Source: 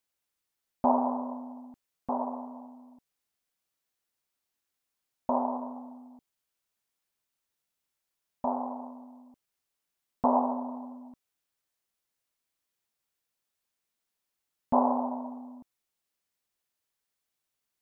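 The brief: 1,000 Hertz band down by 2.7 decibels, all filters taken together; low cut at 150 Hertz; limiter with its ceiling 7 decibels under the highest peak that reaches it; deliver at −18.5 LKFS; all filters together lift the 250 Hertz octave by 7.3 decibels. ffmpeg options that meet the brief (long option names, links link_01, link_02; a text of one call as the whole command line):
ffmpeg -i in.wav -af "highpass=150,equalizer=frequency=250:width_type=o:gain=8,equalizer=frequency=1000:width_type=o:gain=-4,volume=12dB,alimiter=limit=-4dB:level=0:latency=1" out.wav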